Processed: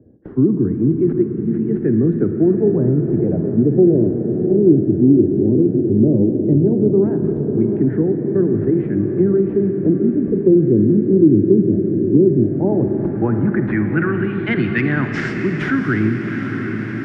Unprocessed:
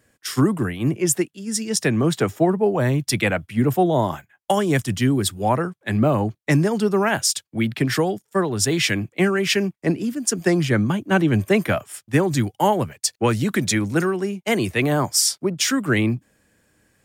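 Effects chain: tracing distortion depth 0.16 ms; high-pass 46 Hz; high-order bell 740 Hz -15 dB; in parallel at -1 dB: peak limiter -16.5 dBFS, peak gain reduction 10.5 dB; on the sum: LFO low-pass sine 0.15 Hz 340–1600 Hz; on a send: echo that smears into a reverb 739 ms, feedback 66%, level -9.5 dB; on the sum: low-pass sweep 450 Hz -> 11 kHz, 12.10–15.70 s; Schroeder reverb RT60 3.1 s, DRR 6.5 dB; three bands compressed up and down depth 40%; trim -3 dB

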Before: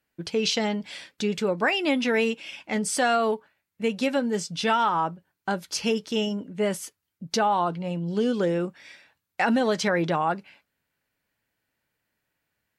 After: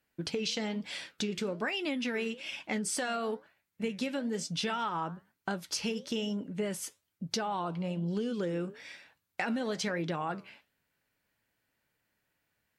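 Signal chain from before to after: dynamic bell 800 Hz, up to -5 dB, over -36 dBFS, Q 1.1; compression, threshold -30 dBFS, peak gain reduction 10 dB; flange 1.1 Hz, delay 3.8 ms, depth 9.1 ms, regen -83%; trim +4 dB

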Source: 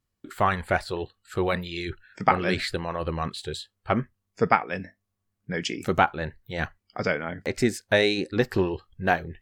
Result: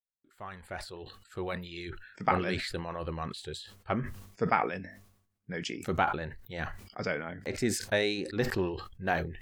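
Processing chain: fade-in on the opening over 2.09 s; decay stretcher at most 77 dB/s; trim -7.5 dB

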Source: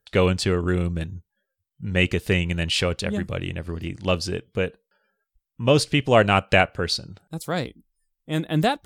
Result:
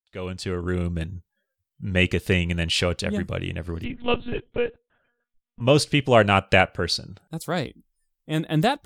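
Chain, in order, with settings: fade-in on the opening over 1.04 s; 3.84–5.61 s: monotone LPC vocoder at 8 kHz 240 Hz

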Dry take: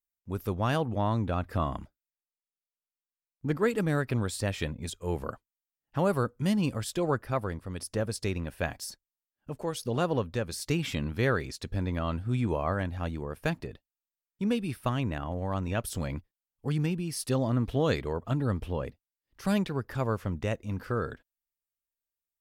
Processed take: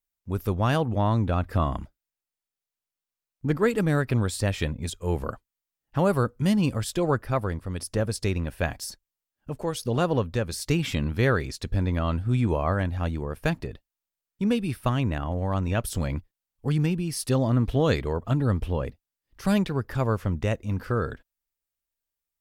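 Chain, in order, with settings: bass shelf 73 Hz +8 dB; trim +3.5 dB

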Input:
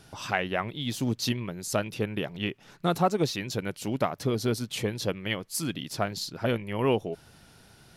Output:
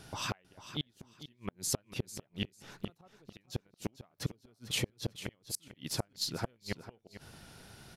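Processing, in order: inverted gate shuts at -21 dBFS, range -39 dB; feedback delay 447 ms, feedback 19%, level -13 dB; trim +1 dB

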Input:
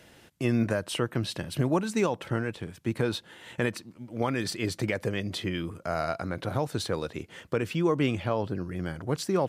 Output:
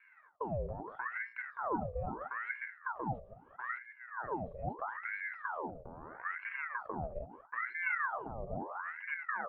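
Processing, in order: chunks repeated in reverse 119 ms, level -14 dB; hum notches 60/120/180/240/300/360/420/480 Hz; peak limiter -23.5 dBFS, peak gain reduction 9.5 dB; formant shift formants -3 st; cascade formant filter u; ring modulator with a swept carrier 1.1 kHz, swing 75%, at 0.77 Hz; trim +6 dB

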